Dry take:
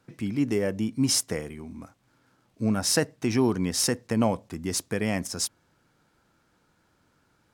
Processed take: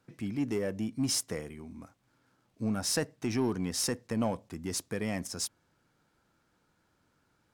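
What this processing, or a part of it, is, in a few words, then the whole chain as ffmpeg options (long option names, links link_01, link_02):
parallel distortion: -filter_complex "[0:a]asplit=2[link_01][link_02];[link_02]asoftclip=type=hard:threshold=-24dB,volume=-5.5dB[link_03];[link_01][link_03]amix=inputs=2:normalize=0,volume=-9dB"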